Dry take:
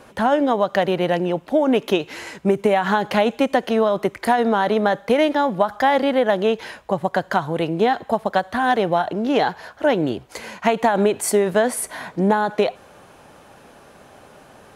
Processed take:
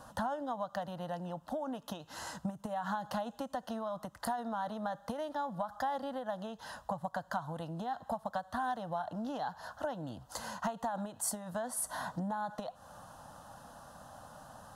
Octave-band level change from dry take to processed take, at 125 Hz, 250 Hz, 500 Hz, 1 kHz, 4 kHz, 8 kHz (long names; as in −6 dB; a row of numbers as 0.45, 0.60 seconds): −15.0, −19.0, −22.0, −16.0, −19.0, −10.0 decibels